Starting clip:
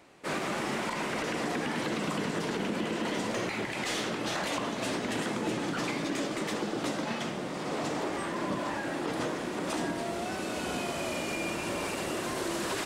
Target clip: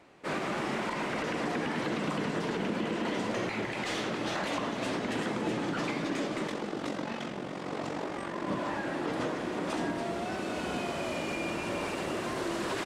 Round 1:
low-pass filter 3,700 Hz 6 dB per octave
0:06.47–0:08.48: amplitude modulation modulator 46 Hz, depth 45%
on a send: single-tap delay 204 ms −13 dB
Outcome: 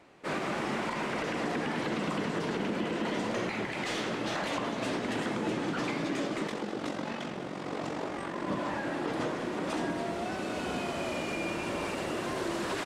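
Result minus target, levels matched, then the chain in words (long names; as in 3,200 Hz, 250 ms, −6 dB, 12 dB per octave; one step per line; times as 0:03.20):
echo 78 ms early
low-pass filter 3,700 Hz 6 dB per octave
0:06.47–0:08.48: amplitude modulation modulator 46 Hz, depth 45%
on a send: single-tap delay 282 ms −13 dB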